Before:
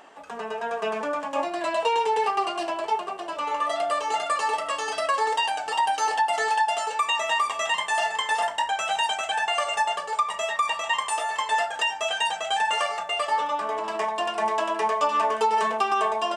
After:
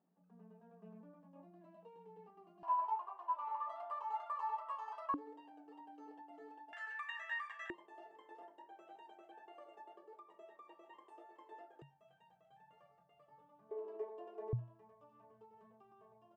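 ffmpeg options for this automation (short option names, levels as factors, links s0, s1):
-af "asetnsamples=n=441:p=0,asendcmd='2.63 bandpass f 990;5.14 bandpass f 290;6.73 bandpass f 1700;7.7 bandpass f 350;11.82 bandpass f 140;13.71 bandpass f 410;14.53 bandpass f 120',bandpass=f=180:t=q:w=18:csg=0"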